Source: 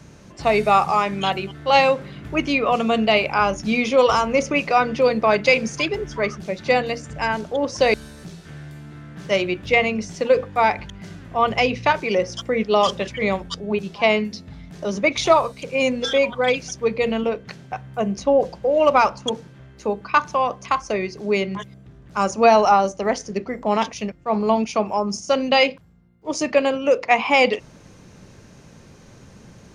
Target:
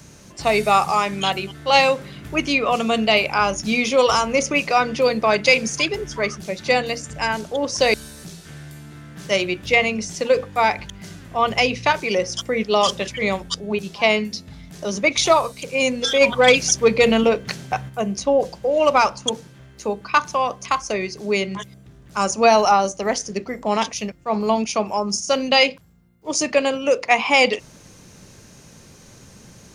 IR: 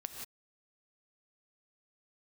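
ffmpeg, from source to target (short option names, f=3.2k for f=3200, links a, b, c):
-filter_complex "[0:a]asplit=3[a][b][c];[a]afade=t=out:st=16.2:d=0.02[d];[b]acontrast=82,afade=t=in:st=16.2:d=0.02,afade=t=out:st=17.88:d=0.02[e];[c]afade=t=in:st=17.88:d=0.02[f];[d][e][f]amix=inputs=3:normalize=0,crystalizer=i=2.5:c=0,volume=-1dB"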